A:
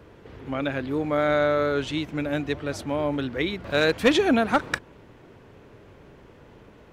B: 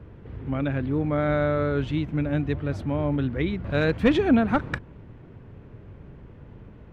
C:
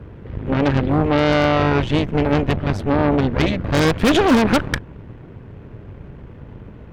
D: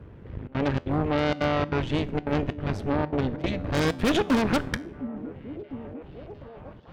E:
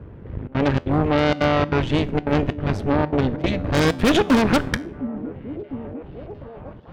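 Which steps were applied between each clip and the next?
tone controls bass +13 dB, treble -13 dB; trim -3.5 dB
in parallel at +2.5 dB: peak limiter -17.5 dBFS, peak gain reduction 10 dB; on the sum: wavefolder -8.5 dBFS; Chebyshev shaper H 4 -8 dB, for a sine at -8.5 dBFS
trance gate "xxxxxx.xxx." 192 bpm -24 dB; feedback comb 83 Hz, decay 0.44 s, harmonics all, mix 40%; repeats whose band climbs or falls 705 ms, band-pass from 200 Hz, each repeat 0.7 oct, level -10 dB; trim -4.5 dB
tape noise reduction on one side only decoder only; trim +6 dB

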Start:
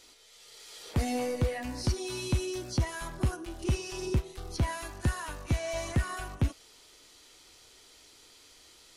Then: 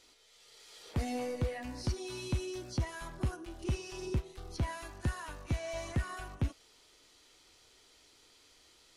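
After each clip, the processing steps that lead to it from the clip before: treble shelf 8 kHz -6 dB; trim -5 dB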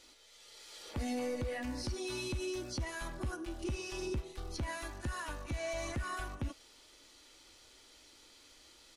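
comb 3.5 ms, depth 33%; peak limiter -32 dBFS, peak gain reduction 9.5 dB; trim +2.5 dB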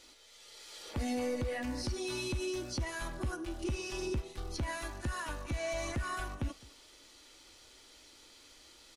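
delay 210 ms -21.5 dB; trim +2 dB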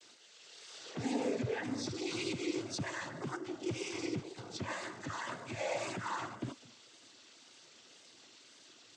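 noise-vocoded speech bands 16; vibrato 1.9 Hz 62 cents

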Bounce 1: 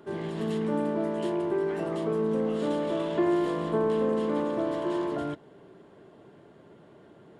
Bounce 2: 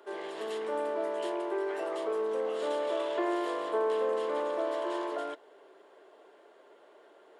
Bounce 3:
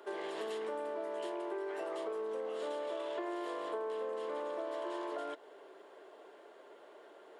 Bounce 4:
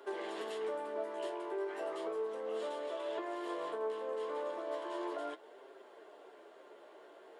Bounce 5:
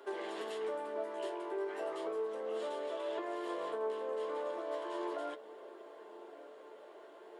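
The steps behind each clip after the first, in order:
high-pass 430 Hz 24 dB/octave
compression, threshold -38 dBFS, peak gain reduction 11.5 dB; trim +1.5 dB
flange 0.35 Hz, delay 7.1 ms, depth 9.4 ms, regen +38%; trim +3.5 dB
feedback echo behind a low-pass 1161 ms, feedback 58%, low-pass 950 Hz, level -15 dB

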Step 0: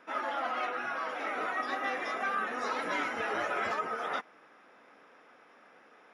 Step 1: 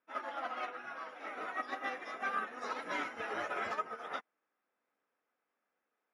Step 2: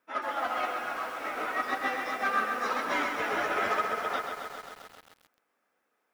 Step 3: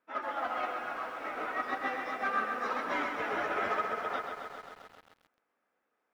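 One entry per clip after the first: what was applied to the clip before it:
upward expansion 2.5:1, over -47 dBFS; trim -1.5 dB
in parallel at -4.5 dB: saturation -37.5 dBFS, distortion -10 dB; on the sum: bit-crushed delay 132 ms, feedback 80%, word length 9-bit, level -6 dB; trim +4.5 dB
treble shelf 4.6 kHz -12 dB; trim -2.5 dB

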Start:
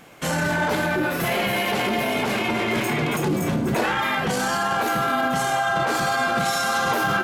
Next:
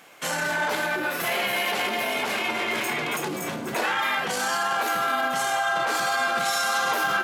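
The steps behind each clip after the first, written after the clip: high-pass 780 Hz 6 dB/octave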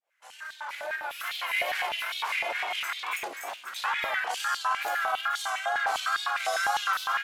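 fade-in on the opening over 1.66 s; wow and flutter 79 cents; step-sequenced high-pass 9.9 Hz 610–3700 Hz; trim -8.5 dB

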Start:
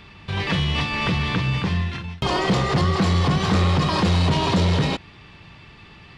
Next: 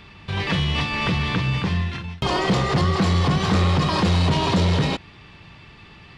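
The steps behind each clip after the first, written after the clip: no audible change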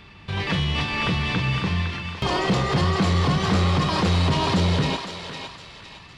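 thinning echo 509 ms, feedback 41%, high-pass 730 Hz, level -6 dB; trim -1.5 dB

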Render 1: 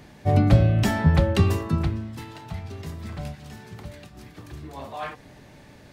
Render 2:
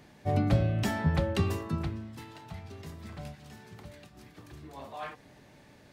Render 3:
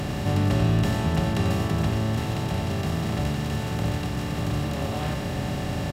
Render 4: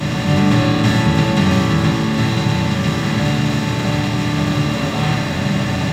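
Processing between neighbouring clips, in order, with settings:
bass shelf 93 Hz -6.5 dB; trim -6.5 dB
spectral levelling over time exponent 0.2; delay 91 ms -6.5 dB; trim -3 dB
reverberation RT60 1.0 s, pre-delay 3 ms, DRR -14.5 dB; trim -3 dB

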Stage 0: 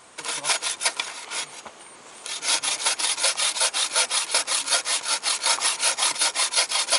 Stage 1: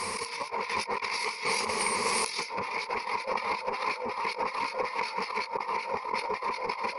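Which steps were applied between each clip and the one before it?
low-pass that closes with the level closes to 690 Hz, closed at -18 dBFS; rippled EQ curve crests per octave 0.87, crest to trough 16 dB; compressor with a negative ratio -40 dBFS, ratio -1; trim +6.5 dB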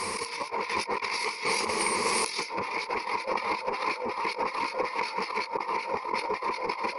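peaking EQ 330 Hz +10.5 dB 0.28 oct; trim +1 dB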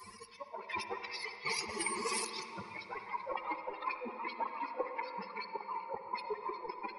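expander on every frequency bin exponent 3; on a send at -6 dB: reverberation RT60 2.8 s, pre-delay 48 ms; on the sum: trim -1.5 dB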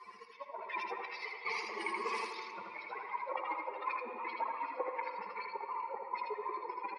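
band-pass 410–2900 Hz; delay 80 ms -3.5 dB

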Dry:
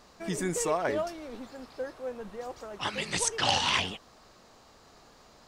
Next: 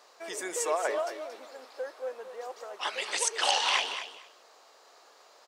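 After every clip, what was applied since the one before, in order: high-pass 430 Hz 24 dB/octave; on a send: feedback delay 228 ms, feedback 16%, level -10.5 dB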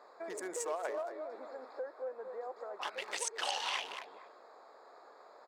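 local Wiener filter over 15 samples; compression 2:1, threshold -47 dBFS, peak gain reduction 14 dB; trim +3.5 dB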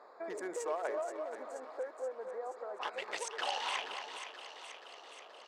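treble shelf 5 kHz -11.5 dB; thinning echo 478 ms, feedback 68%, high-pass 970 Hz, level -8.5 dB; trim +1.5 dB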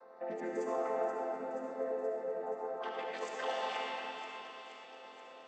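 vocoder on a held chord major triad, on F3; algorithmic reverb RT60 3.1 s, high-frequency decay 0.75×, pre-delay 30 ms, DRR -2.5 dB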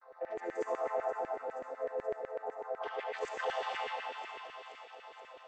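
LFO high-pass saw down 8 Hz 350–2000 Hz; gate with hold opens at -59 dBFS; trim -2.5 dB

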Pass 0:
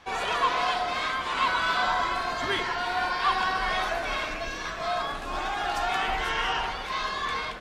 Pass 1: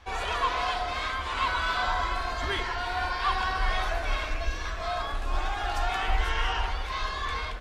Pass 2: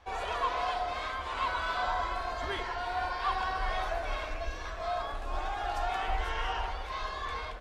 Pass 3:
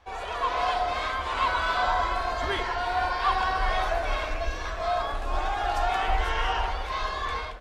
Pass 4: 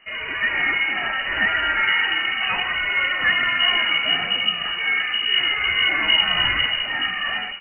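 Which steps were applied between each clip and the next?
resonant low shelf 100 Hz +13 dB, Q 1.5; trim -2.5 dB
peaking EQ 630 Hz +7 dB 1.6 oct; trim -7.5 dB
level rider gain up to 6.5 dB
frequency inversion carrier 2.9 kHz; trim +5 dB

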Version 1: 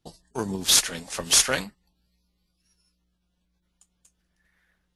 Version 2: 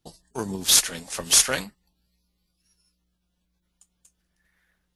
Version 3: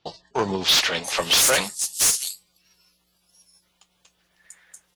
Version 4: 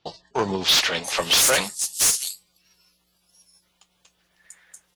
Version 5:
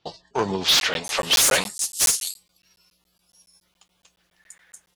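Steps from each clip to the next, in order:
treble shelf 7.9 kHz +6 dB; trim -1 dB
fifteen-band graphic EQ 100 Hz +4 dB, 250 Hz -6 dB, 1.6 kHz -5 dB; bands offset in time lows, highs 690 ms, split 4.9 kHz; overdrive pedal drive 26 dB, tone 6.9 kHz, clips at -5 dBFS; trim -3.5 dB
no audible change
crackling interface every 0.14 s, samples 512, zero, from 0.80 s

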